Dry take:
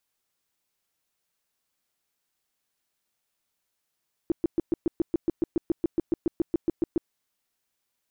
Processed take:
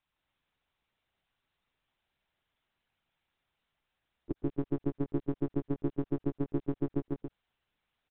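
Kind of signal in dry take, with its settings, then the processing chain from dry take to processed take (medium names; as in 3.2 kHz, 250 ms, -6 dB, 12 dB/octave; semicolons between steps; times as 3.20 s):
tone bursts 334 Hz, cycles 6, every 0.14 s, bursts 20, -19 dBFS
peak limiter -23.5 dBFS; on a send: loudspeakers at several distances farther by 56 m -1 dB, 98 m -6 dB; on the sum: monotone LPC vocoder at 8 kHz 140 Hz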